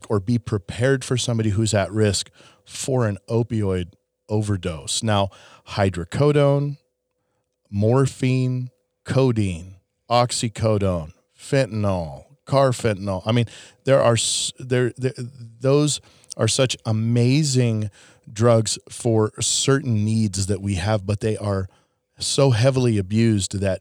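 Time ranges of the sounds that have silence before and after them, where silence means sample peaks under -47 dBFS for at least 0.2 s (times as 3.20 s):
4.29–6.76 s
7.71–8.69 s
9.06–9.78 s
10.09–11.11 s
11.39–21.74 s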